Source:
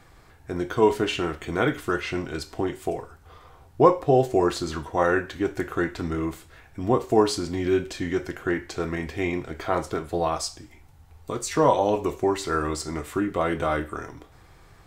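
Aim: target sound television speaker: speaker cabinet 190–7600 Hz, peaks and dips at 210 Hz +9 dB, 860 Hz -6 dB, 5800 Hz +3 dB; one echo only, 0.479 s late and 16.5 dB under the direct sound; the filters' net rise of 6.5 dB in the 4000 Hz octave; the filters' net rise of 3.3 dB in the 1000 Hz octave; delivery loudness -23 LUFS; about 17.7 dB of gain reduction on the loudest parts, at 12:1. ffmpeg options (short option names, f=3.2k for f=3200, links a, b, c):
-af "equalizer=f=1k:t=o:g=6.5,equalizer=f=4k:t=o:g=7.5,acompressor=threshold=-25dB:ratio=12,highpass=f=190:w=0.5412,highpass=f=190:w=1.3066,equalizer=f=210:t=q:w=4:g=9,equalizer=f=860:t=q:w=4:g=-6,equalizer=f=5.8k:t=q:w=4:g=3,lowpass=f=7.6k:w=0.5412,lowpass=f=7.6k:w=1.3066,aecho=1:1:479:0.15,volume=8dB"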